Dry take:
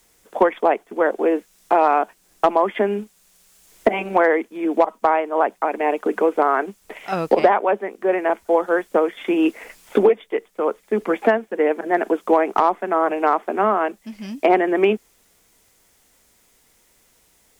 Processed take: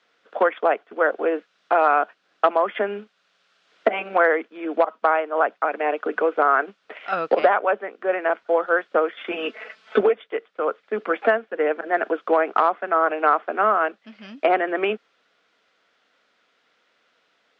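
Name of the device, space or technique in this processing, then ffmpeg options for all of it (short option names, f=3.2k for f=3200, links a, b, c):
phone earpiece: -filter_complex "[0:a]highpass=370,equalizer=f=370:t=q:w=4:g=-6,equalizer=f=900:t=q:w=4:g=-7,equalizer=f=1.4k:t=q:w=4:g=7,equalizer=f=2.1k:t=q:w=4:g=-3,lowpass=f=3.9k:w=0.5412,lowpass=f=3.9k:w=1.3066,asettb=1/sr,asplit=3[a][b][c];[a]atrim=end=9.314[d];[b]atrim=start=9.31:end=10.01,asetpts=PTS-STARTPTS,afade=t=in:d=0.004:c=qsin,afade=t=out:st=0.696:d=0.004:c=qsin,aecho=1:1:4.6:0.89,atrim=end_sample=30870[e];[c]atrim=start=10.006[f];[d][e]acrossfade=d=0.004:c1=hsin:c2=qsin[g];[g][f]acrossfade=d=0.004:c1=qsin:c2=hsin"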